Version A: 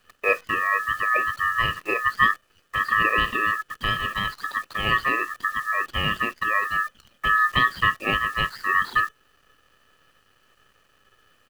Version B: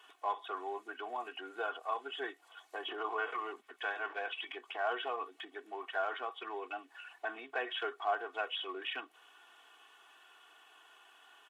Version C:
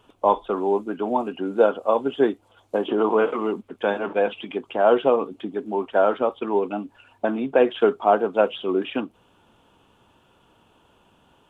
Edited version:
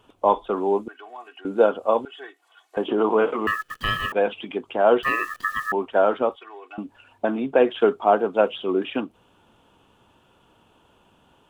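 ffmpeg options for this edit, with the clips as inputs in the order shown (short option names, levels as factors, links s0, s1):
-filter_complex "[1:a]asplit=3[s0][s1][s2];[0:a]asplit=2[s3][s4];[2:a]asplit=6[s5][s6][s7][s8][s9][s10];[s5]atrim=end=0.882[s11];[s0]atrim=start=0.878:end=1.452[s12];[s6]atrim=start=1.448:end=2.052[s13];[s1]atrim=start=2.048:end=2.772[s14];[s7]atrim=start=2.768:end=3.472[s15];[s3]atrim=start=3.468:end=4.122[s16];[s8]atrim=start=4.118:end=5.032[s17];[s4]atrim=start=5.028:end=5.722[s18];[s9]atrim=start=5.718:end=6.362[s19];[s2]atrim=start=6.358:end=6.782[s20];[s10]atrim=start=6.778[s21];[s11][s12]acrossfade=d=0.004:c1=hsin:c2=hsin[s22];[s22][s13]acrossfade=d=0.004:c1=hsin:c2=hsin[s23];[s23][s14]acrossfade=d=0.004:c1=hsin:c2=hsin[s24];[s24][s15]acrossfade=d=0.004:c1=hsin:c2=hsin[s25];[s25][s16]acrossfade=d=0.004:c1=hsin:c2=hsin[s26];[s26][s17]acrossfade=d=0.004:c1=hsin:c2=hsin[s27];[s27][s18]acrossfade=d=0.004:c1=hsin:c2=hsin[s28];[s28][s19]acrossfade=d=0.004:c1=hsin:c2=hsin[s29];[s29][s20]acrossfade=d=0.004:c1=hsin:c2=hsin[s30];[s30][s21]acrossfade=d=0.004:c1=hsin:c2=hsin"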